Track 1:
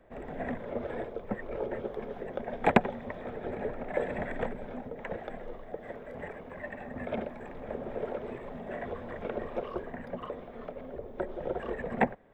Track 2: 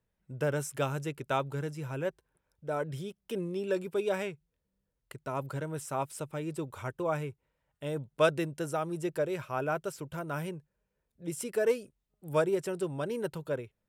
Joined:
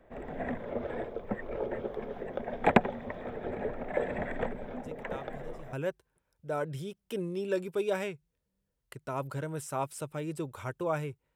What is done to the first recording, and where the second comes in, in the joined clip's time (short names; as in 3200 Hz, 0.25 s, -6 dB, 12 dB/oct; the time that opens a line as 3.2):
track 1
4.82 add track 2 from 1.01 s 0.91 s -14 dB
5.73 switch to track 2 from 1.92 s